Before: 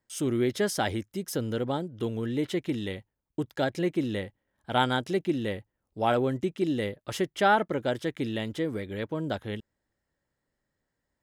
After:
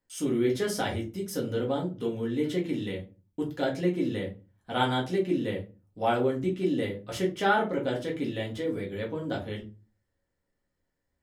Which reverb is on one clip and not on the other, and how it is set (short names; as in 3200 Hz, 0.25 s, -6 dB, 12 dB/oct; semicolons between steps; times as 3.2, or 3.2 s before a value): shoebox room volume 120 m³, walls furnished, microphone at 1.9 m; gain -5.5 dB